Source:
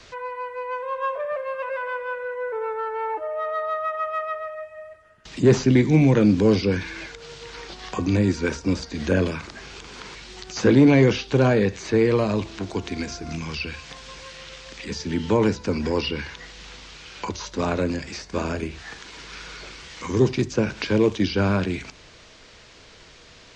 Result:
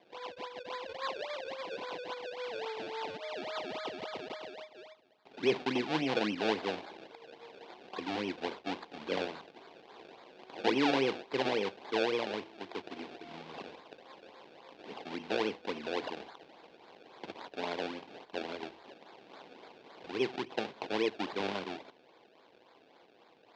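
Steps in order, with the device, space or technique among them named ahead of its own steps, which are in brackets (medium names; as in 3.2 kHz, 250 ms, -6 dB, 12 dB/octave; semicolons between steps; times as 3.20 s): circuit-bent sampling toy (decimation with a swept rate 30×, swing 100% 3.6 Hz; cabinet simulation 430–4300 Hz, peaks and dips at 590 Hz -4 dB, 1.3 kHz -8 dB, 1.8 kHz -5 dB); trim -7.5 dB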